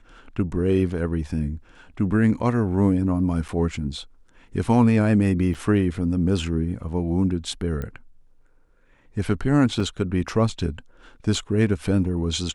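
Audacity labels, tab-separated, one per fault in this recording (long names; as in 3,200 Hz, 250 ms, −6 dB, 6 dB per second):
3.480000	3.490000	drop-out 6.7 ms
5.540000	5.550000	drop-out 7 ms
7.820000	7.820000	click −19 dBFS
9.800000	9.800000	drop-out 3.7 ms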